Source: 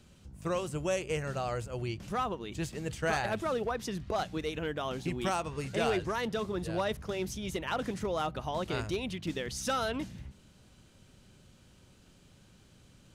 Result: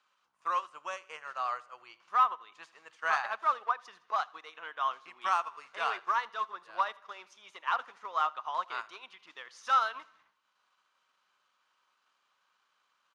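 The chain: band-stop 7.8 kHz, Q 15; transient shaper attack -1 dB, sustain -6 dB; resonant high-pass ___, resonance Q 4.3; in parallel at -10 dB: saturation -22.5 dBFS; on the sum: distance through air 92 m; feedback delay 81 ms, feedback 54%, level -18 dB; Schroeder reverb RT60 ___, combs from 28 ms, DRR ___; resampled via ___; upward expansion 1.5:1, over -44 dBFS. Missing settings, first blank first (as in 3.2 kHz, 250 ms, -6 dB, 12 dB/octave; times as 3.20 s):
1.1 kHz, 0.7 s, 20 dB, 32 kHz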